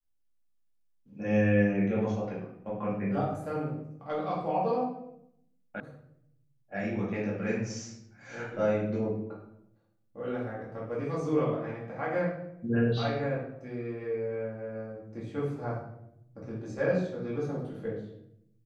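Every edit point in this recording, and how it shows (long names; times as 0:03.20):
0:05.80: cut off before it has died away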